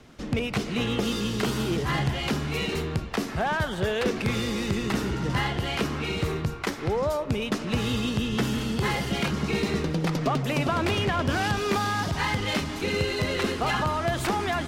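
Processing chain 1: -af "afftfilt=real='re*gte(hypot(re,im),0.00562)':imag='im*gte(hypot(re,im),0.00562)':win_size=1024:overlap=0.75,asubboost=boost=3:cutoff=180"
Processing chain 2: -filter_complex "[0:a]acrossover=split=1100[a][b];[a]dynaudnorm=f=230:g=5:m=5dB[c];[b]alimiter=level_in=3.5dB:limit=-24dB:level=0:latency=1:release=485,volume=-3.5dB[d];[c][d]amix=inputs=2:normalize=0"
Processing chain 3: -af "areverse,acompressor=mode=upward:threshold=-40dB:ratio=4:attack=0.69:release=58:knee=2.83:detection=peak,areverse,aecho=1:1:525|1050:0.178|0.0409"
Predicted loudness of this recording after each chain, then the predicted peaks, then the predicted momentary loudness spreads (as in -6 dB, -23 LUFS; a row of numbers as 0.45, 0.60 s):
-24.5, -23.5, -27.0 LUFS; -8.5, -9.5, -13.5 dBFS; 4, 4, 3 LU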